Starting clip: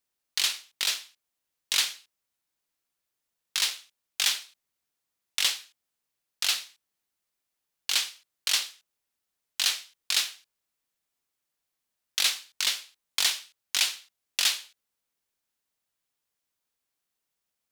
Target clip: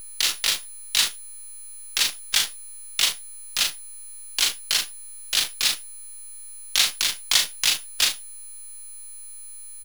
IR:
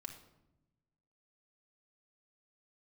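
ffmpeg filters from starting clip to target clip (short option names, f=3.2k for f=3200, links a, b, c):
-filter_complex "[0:a]atempo=1.8,aecho=1:1:38|76:0.596|0.158,aeval=exprs='val(0)+0.0126*sin(2*PI*10000*n/s)':c=same,acrossover=split=250|2300[a][b][c];[c]acrusher=bits=6:dc=4:mix=0:aa=0.000001[d];[a][b][d]amix=inputs=3:normalize=0,volume=5dB"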